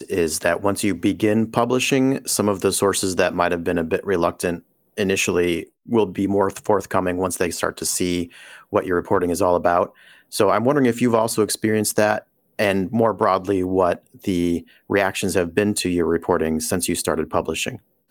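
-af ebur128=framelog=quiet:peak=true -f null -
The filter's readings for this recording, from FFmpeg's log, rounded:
Integrated loudness:
  I:         -20.7 LUFS
  Threshold: -30.8 LUFS
Loudness range:
  LRA:         2.3 LU
  Threshold: -40.8 LUFS
  LRA low:   -21.9 LUFS
  LRA high:  -19.6 LUFS
True peak:
  Peak:       -2.0 dBFS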